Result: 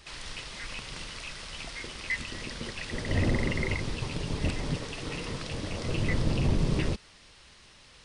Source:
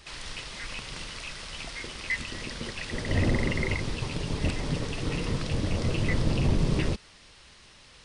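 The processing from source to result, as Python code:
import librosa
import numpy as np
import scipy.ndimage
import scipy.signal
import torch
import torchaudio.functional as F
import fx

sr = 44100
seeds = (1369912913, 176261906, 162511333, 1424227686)

y = fx.low_shelf(x, sr, hz=330.0, db=-7.5, at=(4.76, 5.89))
y = y * 10.0 ** (-1.5 / 20.0)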